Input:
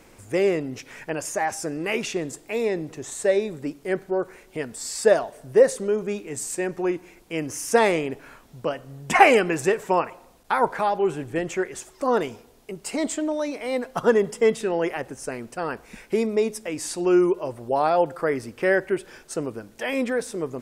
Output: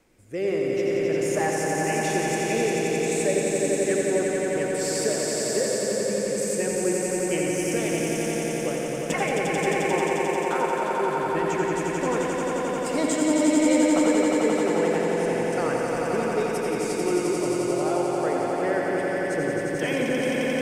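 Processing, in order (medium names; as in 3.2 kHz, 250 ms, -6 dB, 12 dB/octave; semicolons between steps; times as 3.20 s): fade out at the end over 0.91 s; recorder AGC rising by 7.9 dB/s; rotary cabinet horn 1.2 Hz; echo with a slow build-up 88 ms, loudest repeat 5, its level -4.5 dB; reverberation, pre-delay 73 ms, DRR 4 dB; trim -9 dB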